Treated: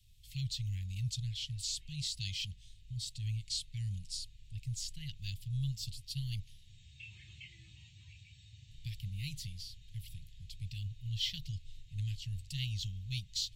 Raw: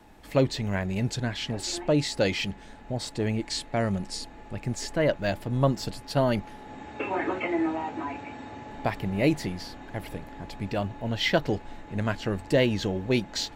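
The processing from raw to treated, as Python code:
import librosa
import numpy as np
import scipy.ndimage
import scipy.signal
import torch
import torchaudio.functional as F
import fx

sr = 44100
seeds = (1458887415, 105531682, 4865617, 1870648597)

y = scipy.signal.sosfilt(scipy.signal.ellip(3, 1.0, 40, [120.0, 3200.0], 'bandstop', fs=sr, output='sos'), x)
y = fx.band_shelf(y, sr, hz=620.0, db=-10.5, octaves=1.7)
y = y * librosa.db_to_amplitude(-4.5)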